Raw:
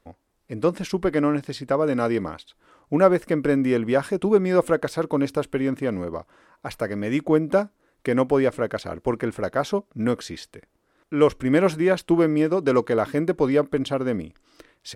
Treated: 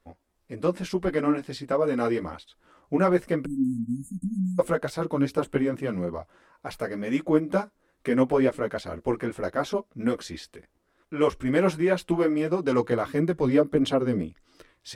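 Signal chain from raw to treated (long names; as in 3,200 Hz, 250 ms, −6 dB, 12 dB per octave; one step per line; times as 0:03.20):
multi-voice chorus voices 6, 1.5 Hz, delay 14 ms, depth 3 ms
time-frequency box erased 0:03.45–0:04.59, 300–6,400 Hz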